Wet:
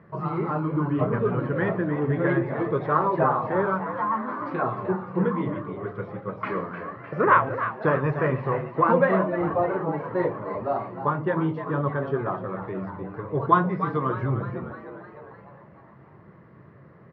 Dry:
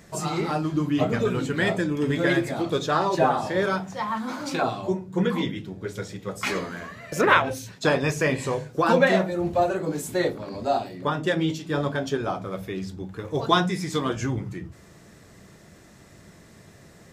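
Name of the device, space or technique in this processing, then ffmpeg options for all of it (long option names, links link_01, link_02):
frequency-shifting delay pedal into a guitar cabinet: -filter_complex "[0:a]lowpass=1500,lowpass=6200,asplit=7[link_01][link_02][link_03][link_04][link_05][link_06][link_07];[link_02]adelay=303,afreqshift=110,volume=-10.5dB[link_08];[link_03]adelay=606,afreqshift=220,volume=-15.5dB[link_09];[link_04]adelay=909,afreqshift=330,volume=-20.6dB[link_10];[link_05]adelay=1212,afreqshift=440,volume=-25.6dB[link_11];[link_06]adelay=1515,afreqshift=550,volume=-30.6dB[link_12];[link_07]adelay=1818,afreqshift=660,volume=-35.7dB[link_13];[link_01][link_08][link_09][link_10][link_11][link_12][link_13]amix=inputs=7:normalize=0,highpass=99,equalizer=frequency=130:width_type=q:width=4:gain=6,equalizer=frequency=260:width_type=q:width=4:gain=-5,equalizer=frequency=740:width_type=q:width=4:gain=-6,equalizer=frequency=1100:width_type=q:width=4:gain=7,equalizer=frequency=2500:width_type=q:width=4:gain=-4,equalizer=frequency=3600:width_type=q:width=4:gain=-8,lowpass=frequency=4200:width=0.5412,lowpass=frequency=4200:width=1.3066"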